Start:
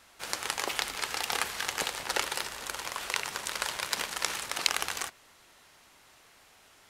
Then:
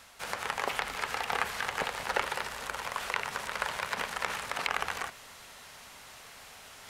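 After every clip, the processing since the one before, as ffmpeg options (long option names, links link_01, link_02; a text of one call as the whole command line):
ffmpeg -i in.wav -filter_complex "[0:a]acrossover=split=2500[link_01][link_02];[link_02]acompressor=threshold=-43dB:ratio=4:attack=1:release=60[link_03];[link_01][link_03]amix=inputs=2:normalize=0,equalizer=frequency=330:width=6.4:gain=-13.5,areverse,acompressor=mode=upward:threshold=-45dB:ratio=2.5,areverse,volume=3dB" out.wav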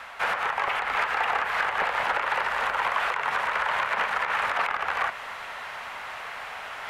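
ffmpeg -i in.wav -filter_complex "[0:a]alimiter=limit=-22dB:level=0:latency=1:release=207,aeval=exprs='0.0794*sin(PI/2*2.24*val(0)/0.0794)':channel_layout=same,acrossover=split=600 2600:gain=0.178 1 0.0794[link_01][link_02][link_03];[link_01][link_02][link_03]amix=inputs=3:normalize=0,volume=7dB" out.wav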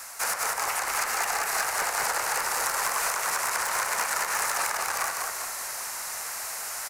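ffmpeg -i in.wav -filter_complex "[0:a]aexciter=amount=14.1:drive=7.9:freq=5100,asplit=2[link_01][link_02];[link_02]asplit=6[link_03][link_04][link_05][link_06][link_07][link_08];[link_03]adelay=197,afreqshift=-38,volume=-3.5dB[link_09];[link_04]adelay=394,afreqshift=-76,volume=-9.7dB[link_10];[link_05]adelay=591,afreqshift=-114,volume=-15.9dB[link_11];[link_06]adelay=788,afreqshift=-152,volume=-22.1dB[link_12];[link_07]adelay=985,afreqshift=-190,volume=-28.3dB[link_13];[link_08]adelay=1182,afreqshift=-228,volume=-34.5dB[link_14];[link_09][link_10][link_11][link_12][link_13][link_14]amix=inputs=6:normalize=0[link_15];[link_01][link_15]amix=inputs=2:normalize=0,volume=-5dB" out.wav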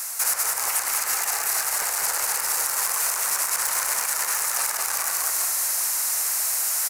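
ffmpeg -i in.wav -af "alimiter=limit=-21dB:level=0:latency=1:release=57,crystalizer=i=2.5:c=0" out.wav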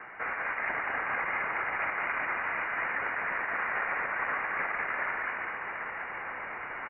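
ffmpeg -i in.wav -filter_complex "[0:a]asplit=2[link_01][link_02];[link_02]aecho=0:1:735:0.355[link_03];[link_01][link_03]amix=inputs=2:normalize=0,lowpass=frequency=2500:width_type=q:width=0.5098,lowpass=frequency=2500:width_type=q:width=0.6013,lowpass=frequency=2500:width_type=q:width=0.9,lowpass=frequency=2500:width_type=q:width=2.563,afreqshift=-2900" out.wav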